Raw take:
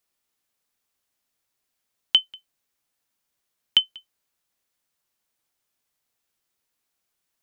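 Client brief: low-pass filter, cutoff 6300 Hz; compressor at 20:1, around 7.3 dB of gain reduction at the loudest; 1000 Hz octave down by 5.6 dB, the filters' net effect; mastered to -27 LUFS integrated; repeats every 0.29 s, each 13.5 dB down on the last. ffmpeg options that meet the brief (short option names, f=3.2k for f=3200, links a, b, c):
-af "lowpass=6.3k,equalizer=f=1k:t=o:g=-7.5,acompressor=threshold=-22dB:ratio=20,aecho=1:1:290|580:0.211|0.0444,volume=5.5dB"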